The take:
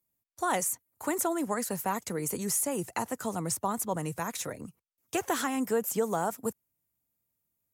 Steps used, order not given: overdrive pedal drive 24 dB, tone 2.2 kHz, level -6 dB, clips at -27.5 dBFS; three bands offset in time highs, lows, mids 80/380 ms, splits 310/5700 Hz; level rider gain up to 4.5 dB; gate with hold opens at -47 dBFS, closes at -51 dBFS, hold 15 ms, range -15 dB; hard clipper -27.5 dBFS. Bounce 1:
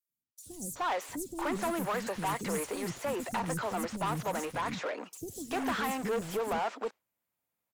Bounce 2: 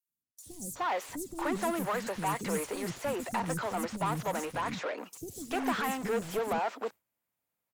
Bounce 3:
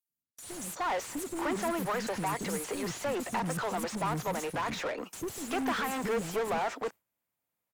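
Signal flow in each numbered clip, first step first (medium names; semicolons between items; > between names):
level rider > overdrive pedal > gate with hold > three bands offset in time > hard clipper; hard clipper > level rider > overdrive pedal > three bands offset in time > gate with hold; hard clipper > level rider > three bands offset in time > overdrive pedal > gate with hold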